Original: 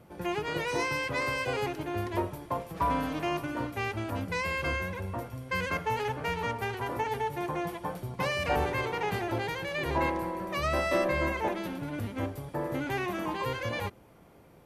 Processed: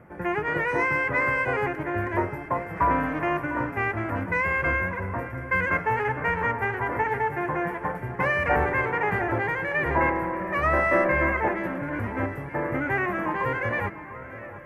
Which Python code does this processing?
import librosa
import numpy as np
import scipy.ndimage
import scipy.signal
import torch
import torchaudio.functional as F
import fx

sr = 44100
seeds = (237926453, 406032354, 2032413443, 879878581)

p1 = fx.high_shelf_res(x, sr, hz=2700.0, db=-13.0, q=3.0)
p2 = p1 + fx.echo_alternate(p1, sr, ms=701, hz=1700.0, feedback_pct=76, wet_db=-14, dry=0)
y = p2 * 10.0 ** (4.0 / 20.0)